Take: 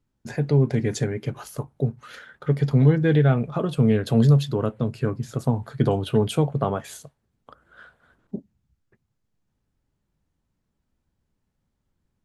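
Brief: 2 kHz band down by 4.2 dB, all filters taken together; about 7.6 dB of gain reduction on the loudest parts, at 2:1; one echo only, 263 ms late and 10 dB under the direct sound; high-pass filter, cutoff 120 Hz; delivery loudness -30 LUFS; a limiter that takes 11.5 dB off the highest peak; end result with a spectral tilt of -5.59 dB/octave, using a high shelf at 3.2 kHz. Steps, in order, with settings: high-pass 120 Hz; peaking EQ 2 kHz -7.5 dB; treble shelf 3.2 kHz +5.5 dB; compression 2:1, threshold -28 dBFS; peak limiter -26 dBFS; delay 263 ms -10 dB; trim +5.5 dB

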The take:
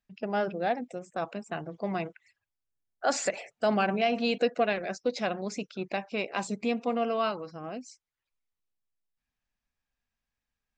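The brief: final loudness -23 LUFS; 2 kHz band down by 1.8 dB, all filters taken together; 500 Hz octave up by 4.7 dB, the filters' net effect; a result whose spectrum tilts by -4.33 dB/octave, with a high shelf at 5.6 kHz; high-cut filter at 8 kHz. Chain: low-pass 8 kHz; peaking EQ 500 Hz +6 dB; peaking EQ 2 kHz -4 dB; treble shelf 5.6 kHz +7 dB; trim +5 dB

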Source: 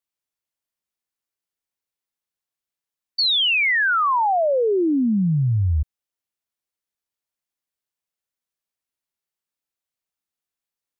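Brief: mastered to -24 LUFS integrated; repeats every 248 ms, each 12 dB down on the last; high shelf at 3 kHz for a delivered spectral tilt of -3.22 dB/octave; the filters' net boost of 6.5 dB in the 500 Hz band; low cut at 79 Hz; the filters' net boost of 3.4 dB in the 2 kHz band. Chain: high-pass 79 Hz; peaking EQ 500 Hz +8 dB; peaking EQ 2 kHz +6 dB; treble shelf 3 kHz -6 dB; feedback delay 248 ms, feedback 25%, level -12 dB; trim -8.5 dB

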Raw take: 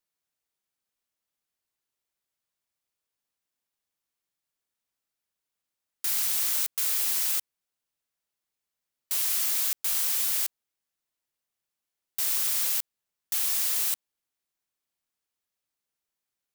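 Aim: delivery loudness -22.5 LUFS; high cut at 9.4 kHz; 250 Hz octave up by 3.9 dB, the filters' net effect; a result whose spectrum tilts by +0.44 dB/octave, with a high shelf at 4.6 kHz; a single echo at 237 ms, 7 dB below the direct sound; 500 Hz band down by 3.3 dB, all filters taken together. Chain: low-pass 9.4 kHz; peaking EQ 250 Hz +7 dB; peaking EQ 500 Hz -6 dB; treble shelf 4.6 kHz -7.5 dB; delay 237 ms -7 dB; trim +13.5 dB

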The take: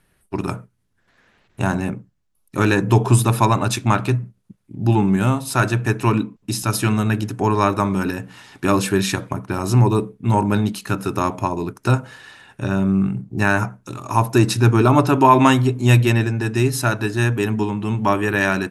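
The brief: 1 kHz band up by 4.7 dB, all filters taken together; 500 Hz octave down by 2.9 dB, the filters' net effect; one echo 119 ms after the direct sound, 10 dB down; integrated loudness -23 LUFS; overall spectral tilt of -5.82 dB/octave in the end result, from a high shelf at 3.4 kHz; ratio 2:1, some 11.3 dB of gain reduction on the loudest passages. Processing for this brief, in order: peaking EQ 500 Hz -6 dB; peaking EQ 1 kHz +7 dB; treble shelf 3.4 kHz -3.5 dB; compression 2:1, threshold -24 dBFS; delay 119 ms -10 dB; trim +1.5 dB

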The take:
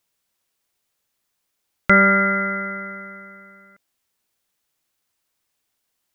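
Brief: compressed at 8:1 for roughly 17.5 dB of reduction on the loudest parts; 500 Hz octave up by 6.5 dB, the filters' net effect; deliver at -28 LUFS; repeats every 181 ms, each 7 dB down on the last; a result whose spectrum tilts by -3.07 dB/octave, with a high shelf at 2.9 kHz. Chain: peaking EQ 500 Hz +8 dB; treble shelf 2.9 kHz +9 dB; compression 8:1, threshold -25 dBFS; feedback delay 181 ms, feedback 45%, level -7 dB; trim -1 dB

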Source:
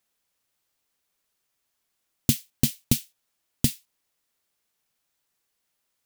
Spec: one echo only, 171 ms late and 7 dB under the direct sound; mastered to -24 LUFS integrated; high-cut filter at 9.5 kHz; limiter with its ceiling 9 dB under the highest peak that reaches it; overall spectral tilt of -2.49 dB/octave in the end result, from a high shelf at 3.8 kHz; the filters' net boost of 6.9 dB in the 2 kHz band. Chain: low-pass 9.5 kHz; peaking EQ 2 kHz +6.5 dB; treble shelf 3.8 kHz +7.5 dB; peak limiter -11 dBFS; delay 171 ms -7 dB; trim +7 dB

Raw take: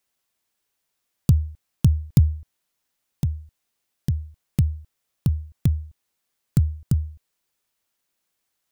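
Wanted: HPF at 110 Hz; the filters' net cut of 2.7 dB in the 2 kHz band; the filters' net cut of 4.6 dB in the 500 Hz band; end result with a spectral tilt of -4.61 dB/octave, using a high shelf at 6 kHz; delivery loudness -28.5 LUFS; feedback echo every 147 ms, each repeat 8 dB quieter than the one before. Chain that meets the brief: high-pass 110 Hz; peaking EQ 500 Hz -6.5 dB; peaking EQ 2 kHz -4.5 dB; treble shelf 6 kHz +9 dB; feedback delay 147 ms, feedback 40%, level -8 dB; trim -0.5 dB

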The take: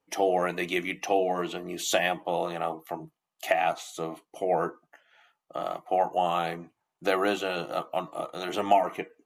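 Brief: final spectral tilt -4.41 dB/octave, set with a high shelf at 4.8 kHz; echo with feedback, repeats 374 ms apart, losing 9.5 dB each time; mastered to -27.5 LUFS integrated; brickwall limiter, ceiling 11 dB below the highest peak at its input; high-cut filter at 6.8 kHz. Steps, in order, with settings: low-pass 6.8 kHz; treble shelf 4.8 kHz -6.5 dB; peak limiter -20 dBFS; feedback delay 374 ms, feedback 33%, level -9.5 dB; trim +5 dB

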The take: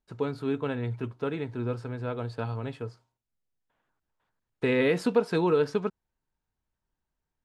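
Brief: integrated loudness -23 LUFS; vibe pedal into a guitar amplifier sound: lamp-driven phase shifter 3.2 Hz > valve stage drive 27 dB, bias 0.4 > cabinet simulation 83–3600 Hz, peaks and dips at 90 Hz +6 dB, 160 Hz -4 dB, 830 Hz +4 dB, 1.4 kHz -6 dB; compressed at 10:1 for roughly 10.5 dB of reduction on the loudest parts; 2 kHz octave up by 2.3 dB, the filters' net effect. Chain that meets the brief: peaking EQ 2 kHz +4 dB; compression 10:1, threshold -29 dBFS; lamp-driven phase shifter 3.2 Hz; valve stage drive 27 dB, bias 0.4; cabinet simulation 83–3600 Hz, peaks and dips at 90 Hz +6 dB, 160 Hz -4 dB, 830 Hz +4 dB, 1.4 kHz -6 dB; trim +18 dB

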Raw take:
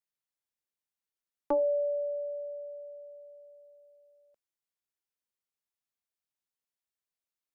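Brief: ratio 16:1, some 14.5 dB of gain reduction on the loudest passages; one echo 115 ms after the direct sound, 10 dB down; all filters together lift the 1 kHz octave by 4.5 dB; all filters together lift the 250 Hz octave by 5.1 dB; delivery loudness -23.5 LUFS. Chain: peaking EQ 250 Hz +6 dB; peaking EQ 1 kHz +5 dB; compression 16:1, threshold -36 dBFS; delay 115 ms -10 dB; trim +20 dB

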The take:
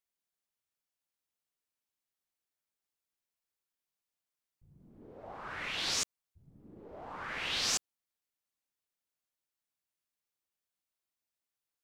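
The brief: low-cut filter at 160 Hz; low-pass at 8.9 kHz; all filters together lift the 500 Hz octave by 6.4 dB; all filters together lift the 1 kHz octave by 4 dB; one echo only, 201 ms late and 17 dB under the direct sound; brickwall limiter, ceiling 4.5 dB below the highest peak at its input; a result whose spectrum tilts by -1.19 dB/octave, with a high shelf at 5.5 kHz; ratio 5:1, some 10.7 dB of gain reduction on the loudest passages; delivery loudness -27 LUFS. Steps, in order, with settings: high-pass 160 Hz; low-pass 8.9 kHz; peaking EQ 500 Hz +7 dB; peaking EQ 1 kHz +3 dB; treble shelf 5.5 kHz +3.5 dB; compression 5:1, threshold -39 dBFS; peak limiter -33.5 dBFS; delay 201 ms -17 dB; trim +16 dB

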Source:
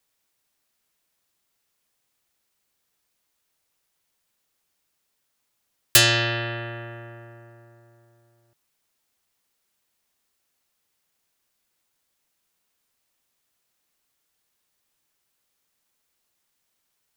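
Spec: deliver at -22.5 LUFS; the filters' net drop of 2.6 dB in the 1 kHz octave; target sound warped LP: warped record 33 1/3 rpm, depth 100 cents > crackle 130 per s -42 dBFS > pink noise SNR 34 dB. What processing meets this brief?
peaking EQ 1 kHz -4 dB; warped record 33 1/3 rpm, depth 100 cents; crackle 130 per s -42 dBFS; pink noise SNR 34 dB; trim -1 dB

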